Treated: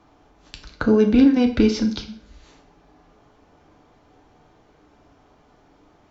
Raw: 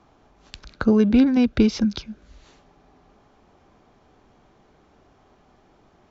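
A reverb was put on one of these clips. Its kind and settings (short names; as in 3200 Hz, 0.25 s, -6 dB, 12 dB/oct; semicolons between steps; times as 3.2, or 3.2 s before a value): FDN reverb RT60 0.53 s, low-frequency decay 0.8×, high-frequency decay 0.9×, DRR 3 dB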